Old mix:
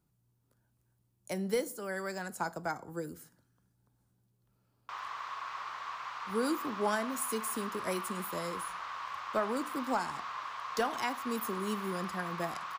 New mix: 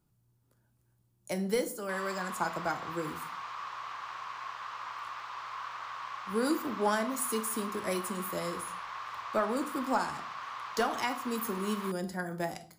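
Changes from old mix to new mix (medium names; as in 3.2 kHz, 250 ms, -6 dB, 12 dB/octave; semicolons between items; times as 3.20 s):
speech: send +9.5 dB; background: entry -3.00 s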